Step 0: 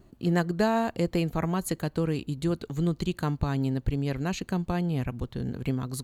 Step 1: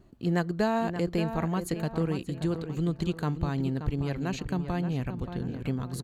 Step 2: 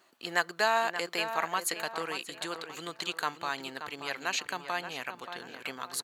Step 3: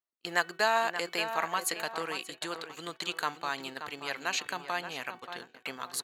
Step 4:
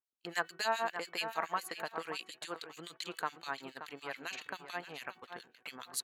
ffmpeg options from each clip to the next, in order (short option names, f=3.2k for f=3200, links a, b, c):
-filter_complex "[0:a]highshelf=f=8.8k:g=-6.5,asplit=2[a][b];[b]adelay=579,lowpass=f=2.9k:p=1,volume=-9dB,asplit=2[c][d];[d]adelay=579,lowpass=f=2.9k:p=1,volume=0.38,asplit=2[e][f];[f]adelay=579,lowpass=f=2.9k:p=1,volume=0.38,asplit=2[g][h];[h]adelay=579,lowpass=f=2.9k:p=1,volume=0.38[i];[c][e][g][i]amix=inputs=4:normalize=0[j];[a][j]amix=inputs=2:normalize=0,volume=-2dB"
-af "highpass=1.1k,volume=9dB"
-af "agate=range=-35dB:threshold=-42dB:ratio=16:detection=peak,bandreject=f=373.7:t=h:w=4,bandreject=f=747.4:t=h:w=4,bandreject=f=1.1211k:t=h:w=4,bandreject=f=1.4948k:t=h:w=4,bandreject=f=1.8685k:t=h:w=4,bandreject=f=2.2422k:t=h:w=4,bandreject=f=2.6159k:t=h:w=4,bandreject=f=2.9896k:t=h:w=4,bandreject=f=3.3633k:t=h:w=4,bandreject=f=3.737k:t=h:w=4"
-filter_complex "[0:a]acrossover=split=2000[a][b];[a]aeval=exprs='val(0)*(1-1/2+1/2*cos(2*PI*7.1*n/s))':c=same[c];[b]aeval=exprs='val(0)*(1-1/2-1/2*cos(2*PI*7.1*n/s))':c=same[d];[c][d]amix=inputs=2:normalize=0,volume=-1.5dB"